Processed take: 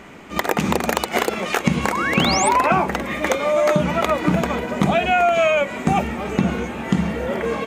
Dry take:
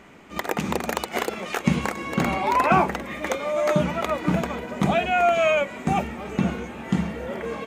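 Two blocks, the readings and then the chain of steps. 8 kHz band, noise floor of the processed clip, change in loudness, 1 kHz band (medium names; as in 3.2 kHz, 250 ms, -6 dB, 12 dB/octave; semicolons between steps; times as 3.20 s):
+10.0 dB, -33 dBFS, +4.5 dB, +4.0 dB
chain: compression, threshold -21 dBFS, peak gain reduction 8 dB; painted sound rise, 1.92–2.49 s, 900–9300 Hz -31 dBFS; trim +7.5 dB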